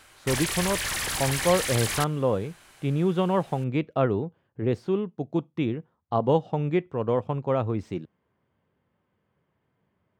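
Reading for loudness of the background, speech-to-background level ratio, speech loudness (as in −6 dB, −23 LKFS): −28.0 LKFS, 0.5 dB, −27.5 LKFS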